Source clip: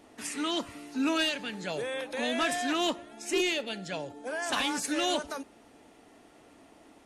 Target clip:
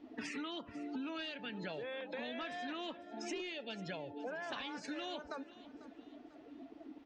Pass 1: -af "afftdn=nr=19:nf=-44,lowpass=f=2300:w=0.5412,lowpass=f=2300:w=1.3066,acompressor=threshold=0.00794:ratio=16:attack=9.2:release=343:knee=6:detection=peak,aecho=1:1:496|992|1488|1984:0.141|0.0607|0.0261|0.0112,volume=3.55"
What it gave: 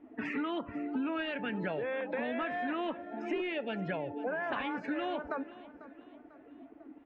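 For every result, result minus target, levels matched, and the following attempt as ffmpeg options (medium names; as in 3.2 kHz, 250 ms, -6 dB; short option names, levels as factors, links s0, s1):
4 kHz band -9.0 dB; compression: peak gain reduction -8.5 dB
-af "afftdn=nr=19:nf=-44,lowpass=f=4800:w=0.5412,lowpass=f=4800:w=1.3066,acompressor=threshold=0.00794:ratio=16:attack=9.2:release=343:knee=6:detection=peak,aecho=1:1:496|992|1488|1984:0.141|0.0607|0.0261|0.0112,volume=3.55"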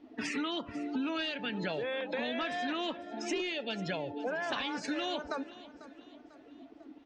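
compression: peak gain reduction -8 dB
-af "afftdn=nr=19:nf=-44,lowpass=f=4800:w=0.5412,lowpass=f=4800:w=1.3066,acompressor=threshold=0.00299:ratio=16:attack=9.2:release=343:knee=6:detection=peak,aecho=1:1:496|992|1488|1984:0.141|0.0607|0.0261|0.0112,volume=3.55"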